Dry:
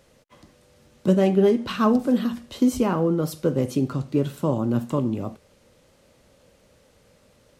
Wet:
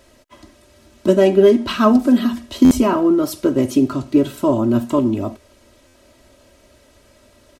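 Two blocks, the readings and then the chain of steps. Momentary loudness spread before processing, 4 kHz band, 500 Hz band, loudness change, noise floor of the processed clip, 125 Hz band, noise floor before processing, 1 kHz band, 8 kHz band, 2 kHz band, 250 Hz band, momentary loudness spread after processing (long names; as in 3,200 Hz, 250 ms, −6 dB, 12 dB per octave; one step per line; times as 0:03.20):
8 LU, +8.0 dB, +7.0 dB, +7.0 dB, −53 dBFS, −0.5 dB, −59 dBFS, +6.5 dB, +7.0 dB, +7.0 dB, +7.0 dB, 7 LU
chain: comb filter 3.1 ms, depth 85%
buffer that repeats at 0:02.64/0:05.87, samples 512, times 5
level +5 dB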